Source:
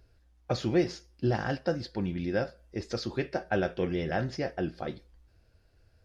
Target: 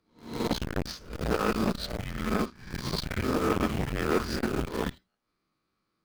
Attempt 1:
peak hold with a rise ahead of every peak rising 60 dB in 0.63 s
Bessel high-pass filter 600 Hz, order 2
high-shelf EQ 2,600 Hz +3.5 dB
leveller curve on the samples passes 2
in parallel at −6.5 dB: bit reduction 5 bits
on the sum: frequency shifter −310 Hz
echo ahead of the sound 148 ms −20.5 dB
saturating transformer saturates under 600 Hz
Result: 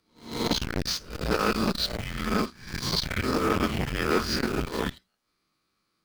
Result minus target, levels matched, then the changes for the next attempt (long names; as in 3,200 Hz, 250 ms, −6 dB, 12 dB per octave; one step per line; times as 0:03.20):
4,000 Hz band +5.0 dB
change: high-shelf EQ 2,600 Hz −7 dB